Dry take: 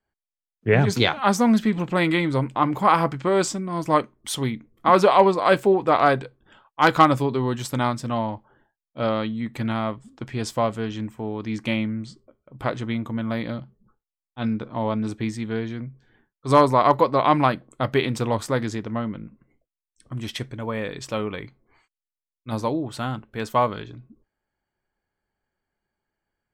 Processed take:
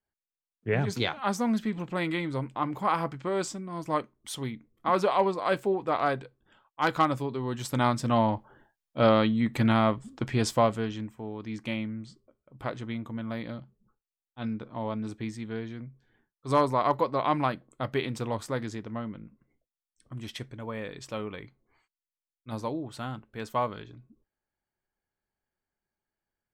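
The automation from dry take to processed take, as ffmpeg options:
-af "volume=1.33,afade=t=in:st=7.43:d=0.9:silence=0.266073,afade=t=out:st=10.29:d=0.82:silence=0.298538"

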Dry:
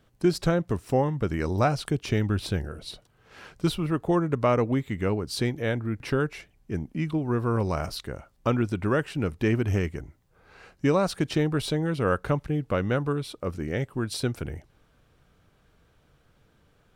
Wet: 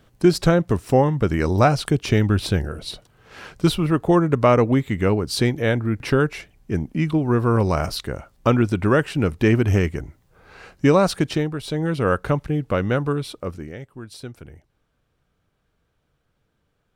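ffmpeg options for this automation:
-af "volume=6.31,afade=t=out:st=11.1:d=0.51:silence=0.266073,afade=t=in:st=11.61:d=0.24:silence=0.354813,afade=t=out:st=13.3:d=0.47:silence=0.237137"

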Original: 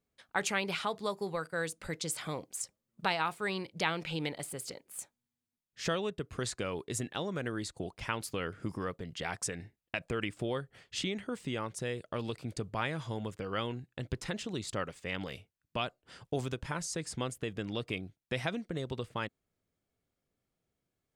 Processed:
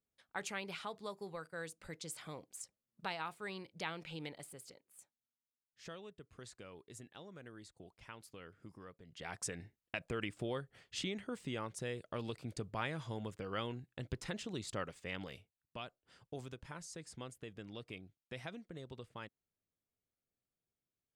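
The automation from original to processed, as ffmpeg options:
-af "volume=1.26,afade=t=out:st=4.34:d=0.59:silence=0.446684,afade=t=in:st=9.05:d=0.41:silence=0.251189,afade=t=out:st=14.98:d=0.82:silence=0.446684"

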